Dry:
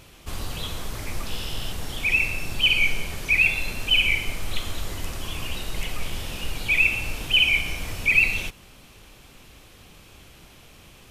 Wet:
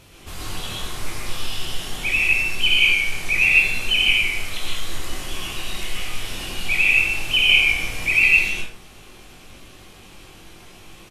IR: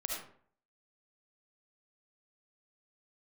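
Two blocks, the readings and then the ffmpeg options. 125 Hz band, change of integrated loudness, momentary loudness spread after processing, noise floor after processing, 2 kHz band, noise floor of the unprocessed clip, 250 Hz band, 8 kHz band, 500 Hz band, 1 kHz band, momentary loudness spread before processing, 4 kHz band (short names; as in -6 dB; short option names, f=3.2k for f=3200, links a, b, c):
-1.5 dB, +5.0 dB, 17 LU, -45 dBFS, +4.5 dB, -50 dBFS, +0.5 dB, +4.5 dB, +1.5 dB, +3.0 dB, 15 LU, +3.5 dB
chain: -filter_complex "[0:a]acrossover=split=1200[a][b];[a]alimiter=level_in=2dB:limit=-24dB:level=0:latency=1:release=313,volume=-2dB[c];[c][b]amix=inputs=2:normalize=0,asplit=2[d][e];[e]adelay=21,volume=-5dB[f];[d][f]amix=inputs=2:normalize=0[g];[1:a]atrim=start_sample=2205,afade=t=out:st=0.2:d=0.01,atrim=end_sample=9261,asetrate=25137,aresample=44100[h];[g][h]afir=irnorm=-1:irlink=0,volume=-2dB"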